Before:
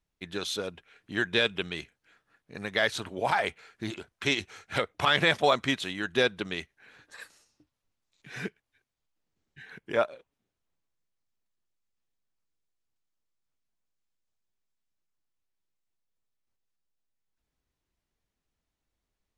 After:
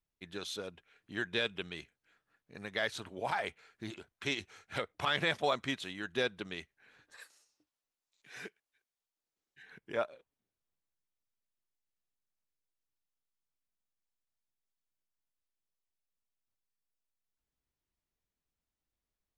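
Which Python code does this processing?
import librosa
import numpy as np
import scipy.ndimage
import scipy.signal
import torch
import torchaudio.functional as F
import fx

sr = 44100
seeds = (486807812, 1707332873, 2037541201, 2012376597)

y = fx.bass_treble(x, sr, bass_db=-14, treble_db=4, at=(7.17, 9.63))
y = F.gain(torch.from_numpy(y), -8.0).numpy()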